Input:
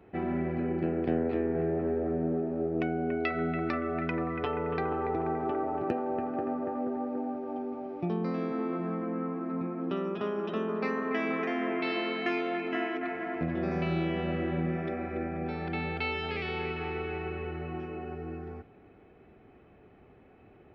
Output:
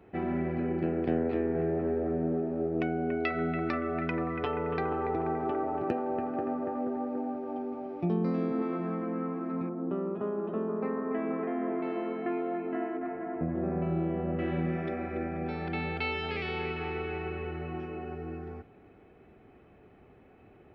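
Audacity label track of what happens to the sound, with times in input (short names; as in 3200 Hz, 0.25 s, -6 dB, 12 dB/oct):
8.040000	8.620000	tilt shelf lows +4 dB, about 630 Hz
9.690000	14.390000	LPF 1000 Hz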